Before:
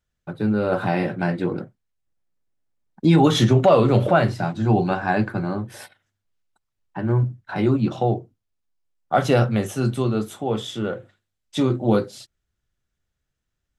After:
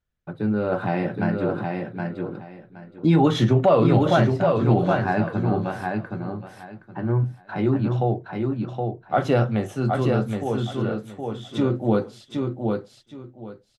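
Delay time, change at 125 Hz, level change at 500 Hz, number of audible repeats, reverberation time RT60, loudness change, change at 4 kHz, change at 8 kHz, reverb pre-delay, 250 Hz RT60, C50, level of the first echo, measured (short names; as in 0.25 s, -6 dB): 0.769 s, -0.5 dB, -0.5 dB, 3, none, -2.0 dB, -5.0 dB, n/a, none, none, none, -4.0 dB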